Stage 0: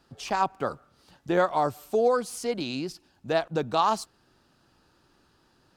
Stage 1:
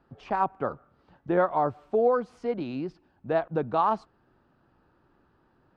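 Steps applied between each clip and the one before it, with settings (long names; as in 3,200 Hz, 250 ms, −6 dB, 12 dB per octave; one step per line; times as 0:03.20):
low-pass filter 1,600 Hz 12 dB per octave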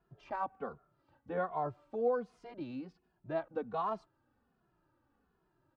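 barber-pole flanger 2.4 ms −1.3 Hz
level −7.5 dB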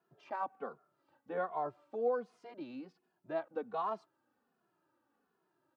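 high-pass filter 250 Hz 12 dB per octave
level −1 dB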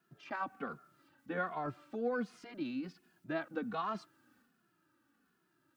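transient designer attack +3 dB, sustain +7 dB
flat-topped bell 640 Hz −11 dB
level +6 dB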